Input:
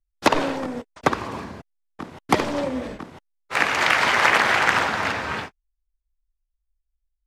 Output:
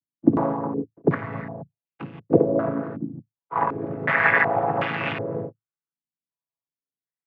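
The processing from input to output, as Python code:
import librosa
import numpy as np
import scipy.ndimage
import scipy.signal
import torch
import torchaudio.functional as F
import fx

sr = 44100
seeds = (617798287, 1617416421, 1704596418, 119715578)

y = fx.chord_vocoder(x, sr, chord='major triad', root=45)
y = fx.filter_held_lowpass(y, sr, hz=2.7, low_hz=260.0, high_hz=2700.0)
y = F.gain(torch.from_numpy(y), -3.5).numpy()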